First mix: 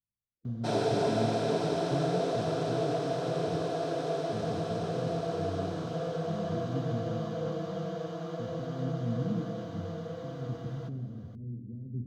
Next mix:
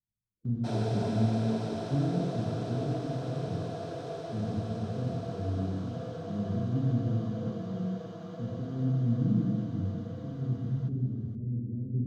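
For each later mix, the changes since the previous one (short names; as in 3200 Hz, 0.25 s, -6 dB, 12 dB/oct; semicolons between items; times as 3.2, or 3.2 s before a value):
speech: send +10.0 dB; background -6.5 dB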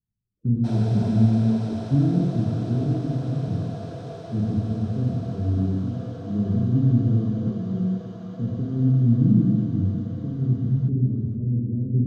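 speech +9.5 dB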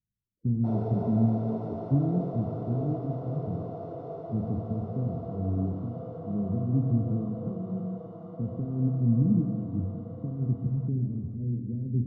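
speech: send -10.5 dB; master: add polynomial smoothing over 65 samples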